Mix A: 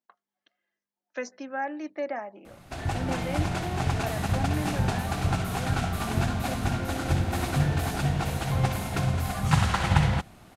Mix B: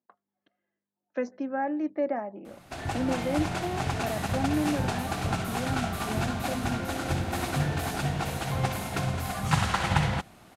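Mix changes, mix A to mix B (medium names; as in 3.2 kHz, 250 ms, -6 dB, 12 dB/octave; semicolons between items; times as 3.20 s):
speech: add tilt EQ -4.5 dB/octave; master: add bass shelf 120 Hz -8.5 dB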